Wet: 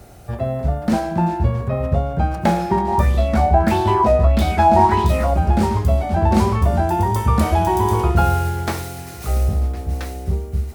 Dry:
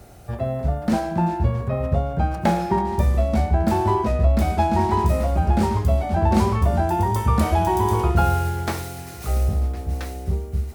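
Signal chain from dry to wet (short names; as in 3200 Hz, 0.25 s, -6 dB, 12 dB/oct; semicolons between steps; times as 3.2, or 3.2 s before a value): 2.88–5.34 LFO bell 1.6 Hz 650–3800 Hz +11 dB; gain +2.5 dB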